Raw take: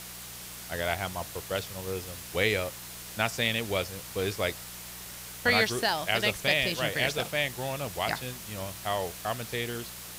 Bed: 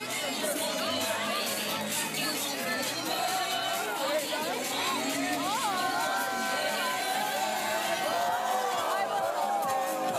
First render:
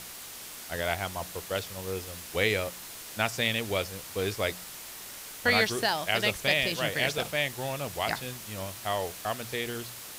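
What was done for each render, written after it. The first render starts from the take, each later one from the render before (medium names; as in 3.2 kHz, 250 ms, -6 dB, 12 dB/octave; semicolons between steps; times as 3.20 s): de-hum 60 Hz, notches 3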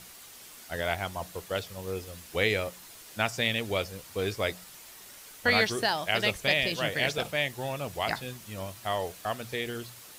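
noise reduction 7 dB, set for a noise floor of -43 dBFS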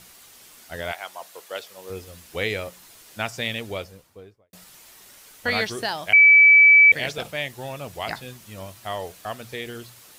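0.91–1.89 s: high-pass 720 Hz -> 330 Hz; 3.52–4.53 s: studio fade out; 6.13–6.92 s: bleep 2.3 kHz -8.5 dBFS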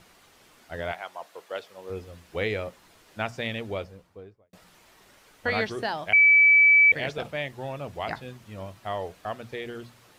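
low-pass 1.7 kHz 6 dB/octave; hum notches 60/120/180/240 Hz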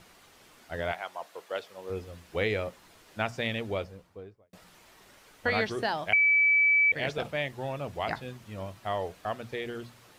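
compression, threshold -21 dBFS, peak gain reduction 6 dB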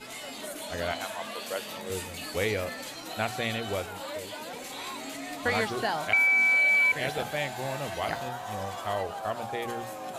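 add bed -8 dB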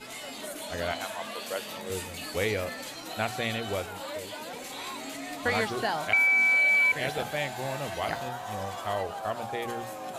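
no audible change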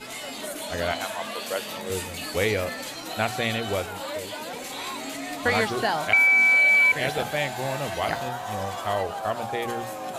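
trim +4.5 dB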